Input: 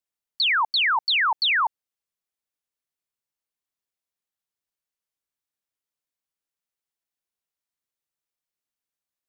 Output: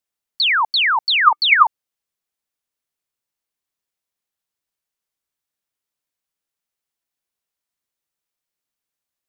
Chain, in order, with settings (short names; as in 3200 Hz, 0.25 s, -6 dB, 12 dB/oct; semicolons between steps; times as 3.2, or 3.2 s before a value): 1.24–1.64 small resonant body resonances 330/1200/2200 Hz, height 14 dB, ringing for 50 ms; gain +4.5 dB